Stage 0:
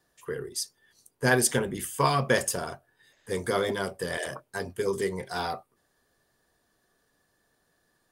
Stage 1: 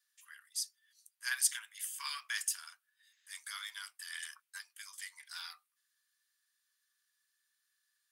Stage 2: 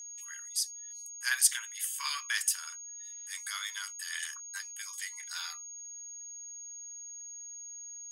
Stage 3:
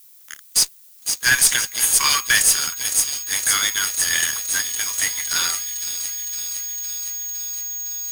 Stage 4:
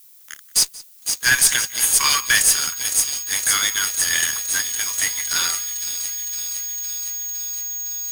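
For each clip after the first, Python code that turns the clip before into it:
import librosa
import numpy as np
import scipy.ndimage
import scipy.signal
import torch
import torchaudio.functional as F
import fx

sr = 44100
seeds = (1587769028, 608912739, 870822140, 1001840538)

y1 = scipy.signal.sosfilt(scipy.signal.bessel(8, 2300.0, 'highpass', norm='mag', fs=sr, output='sos'), x)
y1 = y1 * 10.0 ** (-4.5 / 20.0)
y2 = y1 + 10.0 ** (-48.0 / 20.0) * np.sin(2.0 * np.pi * 6600.0 * np.arange(len(y1)) / sr)
y2 = y2 * 10.0 ** (5.5 / 20.0)
y3 = fx.echo_wet_highpass(y2, sr, ms=510, feedback_pct=71, hz=3600.0, wet_db=-7.5)
y3 = fx.fuzz(y3, sr, gain_db=31.0, gate_db=-39.0)
y3 = fx.dmg_noise_colour(y3, sr, seeds[0], colour='violet', level_db=-51.0)
y3 = y3 * 10.0 ** (3.0 / 20.0)
y4 = y3 + 10.0 ** (-21.5 / 20.0) * np.pad(y3, (int(180 * sr / 1000.0), 0))[:len(y3)]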